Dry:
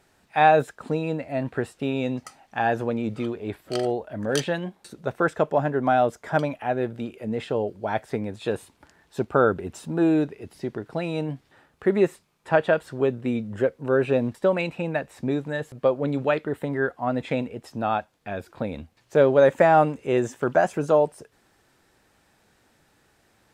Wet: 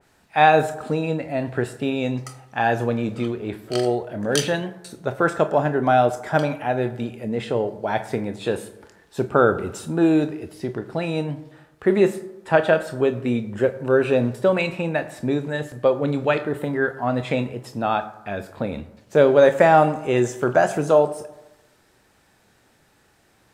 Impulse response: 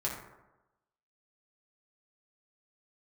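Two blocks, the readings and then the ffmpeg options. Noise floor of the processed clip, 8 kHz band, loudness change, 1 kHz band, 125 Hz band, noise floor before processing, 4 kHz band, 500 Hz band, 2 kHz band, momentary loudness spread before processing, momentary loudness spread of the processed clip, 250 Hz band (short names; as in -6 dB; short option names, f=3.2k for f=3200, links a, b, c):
-60 dBFS, n/a, +3.0 dB, +3.0 dB, +3.5 dB, -64 dBFS, +5.5 dB, +3.0 dB, +3.5 dB, 13 LU, 13 LU, +3.0 dB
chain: -filter_complex "[0:a]asplit=2[a][b];[1:a]atrim=start_sample=2205,highshelf=f=4.4k:g=8.5,adelay=25[c];[b][c]afir=irnorm=-1:irlink=0,volume=-15dB[d];[a][d]amix=inputs=2:normalize=0,adynamicequalizer=threshold=0.02:dfrequency=2500:dqfactor=0.7:tfrequency=2500:tqfactor=0.7:attack=5:release=100:ratio=0.375:range=2:mode=boostabove:tftype=highshelf,volume=2.5dB"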